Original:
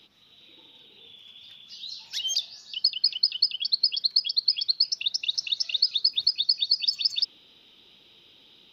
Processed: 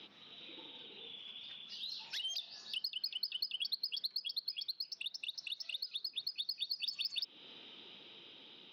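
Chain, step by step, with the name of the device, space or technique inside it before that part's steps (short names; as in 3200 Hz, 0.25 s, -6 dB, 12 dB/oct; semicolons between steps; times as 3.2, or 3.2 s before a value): AM radio (BPF 170–3500 Hz; compressor 6:1, threshold -39 dBFS, peak gain reduction 16 dB; soft clip -32 dBFS, distortion -19 dB; tremolo 0.28 Hz, depth 36%); gain +4.5 dB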